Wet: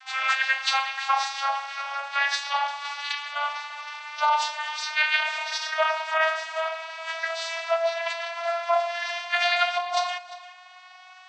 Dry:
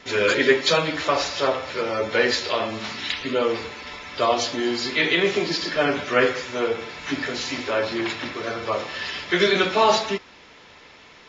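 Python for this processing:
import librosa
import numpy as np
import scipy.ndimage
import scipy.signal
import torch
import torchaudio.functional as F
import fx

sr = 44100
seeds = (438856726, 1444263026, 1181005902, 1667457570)

p1 = fx.vocoder_glide(x, sr, note=60, semitones=6)
p2 = scipy.signal.sosfilt(scipy.signal.cheby1(8, 1.0, 660.0, 'highpass', fs=sr, output='sos'), p1)
p3 = fx.over_compress(p2, sr, threshold_db=-26.0, ratio=-0.5)
p4 = p3 + fx.echo_single(p3, sr, ms=347, db=-17.5, dry=0)
p5 = fx.rev_fdn(p4, sr, rt60_s=1.1, lf_ratio=1.55, hf_ratio=0.95, size_ms=31.0, drr_db=14.5)
y = p5 * 10.0 ** (6.0 / 20.0)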